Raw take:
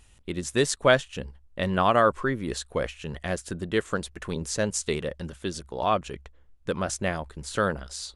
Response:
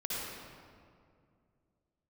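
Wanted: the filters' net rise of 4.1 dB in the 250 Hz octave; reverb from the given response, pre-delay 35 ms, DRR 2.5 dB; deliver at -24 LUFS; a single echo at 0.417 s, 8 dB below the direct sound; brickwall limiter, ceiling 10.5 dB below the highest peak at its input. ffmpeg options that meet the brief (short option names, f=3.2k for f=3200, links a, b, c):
-filter_complex "[0:a]equalizer=f=250:t=o:g=5.5,alimiter=limit=-16dB:level=0:latency=1,aecho=1:1:417:0.398,asplit=2[a][b];[1:a]atrim=start_sample=2205,adelay=35[c];[b][c]afir=irnorm=-1:irlink=0,volume=-7dB[d];[a][d]amix=inputs=2:normalize=0,volume=3dB"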